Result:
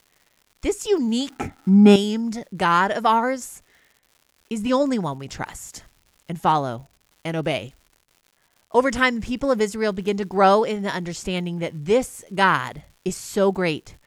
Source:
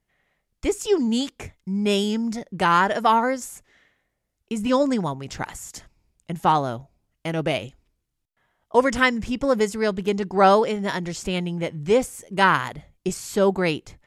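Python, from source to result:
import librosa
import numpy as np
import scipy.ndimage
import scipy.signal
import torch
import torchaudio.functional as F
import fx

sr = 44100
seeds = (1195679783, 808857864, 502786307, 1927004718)

y = fx.dmg_crackle(x, sr, seeds[0], per_s=210.0, level_db=-43.0)
y = fx.small_body(y, sr, hz=(270.0, 790.0, 1300.0), ring_ms=25, db=18, at=(1.3, 1.96))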